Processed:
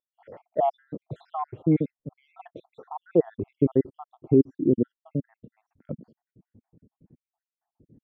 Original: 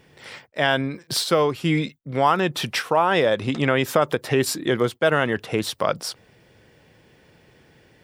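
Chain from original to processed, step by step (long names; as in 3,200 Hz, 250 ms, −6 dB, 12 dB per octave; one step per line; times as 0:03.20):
time-frequency cells dropped at random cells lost 70%
low-pass filter sweep 610 Hz → 240 Hz, 0:01.65–0:05.31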